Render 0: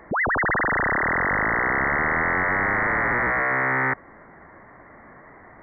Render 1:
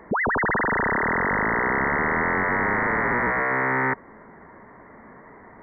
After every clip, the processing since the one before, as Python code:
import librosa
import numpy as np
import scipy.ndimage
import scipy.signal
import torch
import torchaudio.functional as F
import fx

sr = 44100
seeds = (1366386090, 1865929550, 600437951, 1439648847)

y = fx.small_body(x, sr, hz=(220.0, 420.0, 940.0), ring_ms=30, db=7)
y = F.gain(torch.from_numpy(y), -2.0).numpy()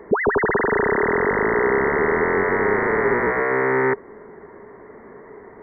y = fx.peak_eq(x, sr, hz=410.0, db=13.5, octaves=0.47)